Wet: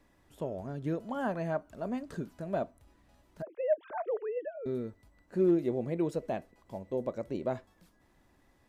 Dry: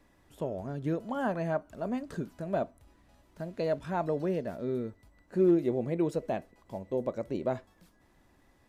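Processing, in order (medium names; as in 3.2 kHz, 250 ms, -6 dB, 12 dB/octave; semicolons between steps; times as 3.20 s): 3.42–4.66 s: formants replaced by sine waves; trim -2 dB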